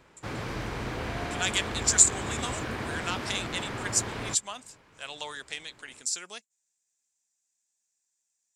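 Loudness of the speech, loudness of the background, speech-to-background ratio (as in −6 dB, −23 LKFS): −28.0 LKFS, −35.0 LKFS, 7.0 dB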